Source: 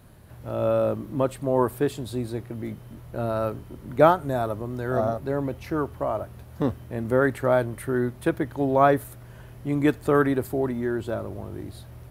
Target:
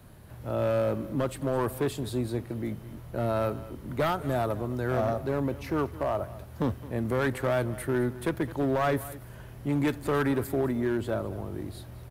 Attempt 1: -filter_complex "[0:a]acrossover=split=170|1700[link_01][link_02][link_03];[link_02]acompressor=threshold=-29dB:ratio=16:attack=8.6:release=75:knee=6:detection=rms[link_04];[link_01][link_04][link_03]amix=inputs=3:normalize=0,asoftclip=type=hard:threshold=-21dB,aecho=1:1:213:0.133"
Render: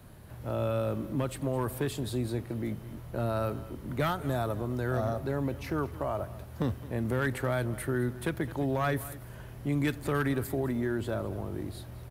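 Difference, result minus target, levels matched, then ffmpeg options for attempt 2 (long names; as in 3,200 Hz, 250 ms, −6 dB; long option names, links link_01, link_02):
downward compressor: peak gain reduction +7 dB
-filter_complex "[0:a]acrossover=split=170|1700[link_01][link_02][link_03];[link_02]acompressor=threshold=-21.5dB:ratio=16:attack=8.6:release=75:knee=6:detection=rms[link_04];[link_01][link_04][link_03]amix=inputs=3:normalize=0,asoftclip=type=hard:threshold=-21dB,aecho=1:1:213:0.133"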